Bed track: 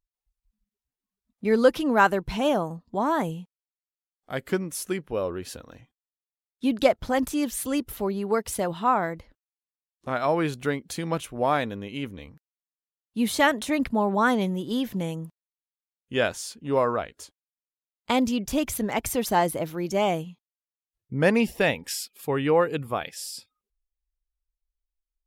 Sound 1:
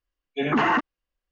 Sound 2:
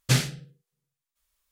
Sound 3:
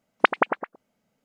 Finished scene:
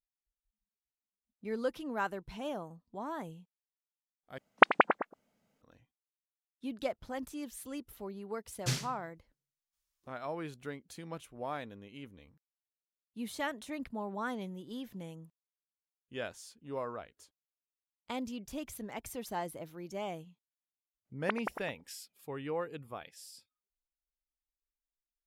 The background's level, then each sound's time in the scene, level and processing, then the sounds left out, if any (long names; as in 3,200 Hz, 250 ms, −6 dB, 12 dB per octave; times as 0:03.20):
bed track −15.5 dB
0:04.38: overwrite with 3 −2.5 dB
0:08.57: mix in 2 −12 dB + parametric band 5,600 Hz +5 dB
0:21.05: mix in 3 −17 dB
not used: 1